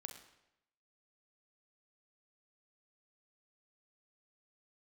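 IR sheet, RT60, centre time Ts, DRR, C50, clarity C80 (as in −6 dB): 0.85 s, 21 ms, 5.0 dB, 7.5 dB, 10.5 dB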